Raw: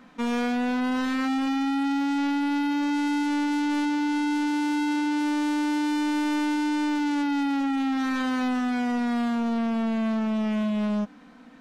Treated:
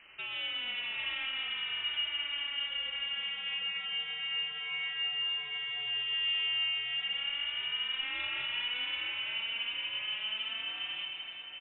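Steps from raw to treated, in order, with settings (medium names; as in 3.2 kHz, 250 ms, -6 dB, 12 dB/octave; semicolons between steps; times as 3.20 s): one-bit delta coder 64 kbps, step -44 dBFS; steep high-pass 660 Hz 48 dB/octave; tilt EQ -1.5 dB/octave; one-sided clip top -37.5 dBFS; distance through air 270 m; delay 730 ms -10.5 dB; on a send at -2.5 dB: reverberation RT60 2.1 s, pre-delay 122 ms; on the sum: frequency inversion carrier 3.7 kHz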